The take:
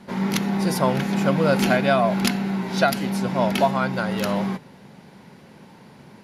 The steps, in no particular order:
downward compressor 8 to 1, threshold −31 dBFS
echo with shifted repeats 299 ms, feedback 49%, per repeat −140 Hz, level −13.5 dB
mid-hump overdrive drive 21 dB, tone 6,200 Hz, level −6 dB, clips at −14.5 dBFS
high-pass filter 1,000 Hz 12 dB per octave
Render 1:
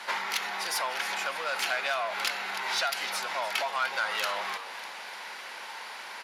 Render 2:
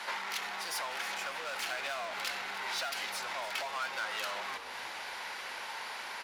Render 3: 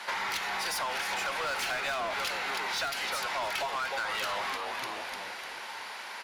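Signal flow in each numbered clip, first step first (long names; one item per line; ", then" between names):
downward compressor, then echo with shifted repeats, then mid-hump overdrive, then high-pass filter
mid-hump overdrive, then downward compressor, then high-pass filter, then echo with shifted repeats
high-pass filter, then echo with shifted repeats, then mid-hump overdrive, then downward compressor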